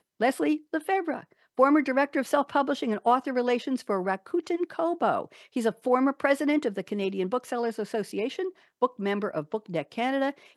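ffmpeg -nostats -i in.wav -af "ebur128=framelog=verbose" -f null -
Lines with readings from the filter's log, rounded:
Integrated loudness:
  I:         -27.5 LUFS
  Threshold: -37.6 LUFS
Loudness range:
  LRA:         4.4 LU
  Threshold: -47.4 LUFS
  LRA low:   -30.3 LUFS
  LRA high:  -25.9 LUFS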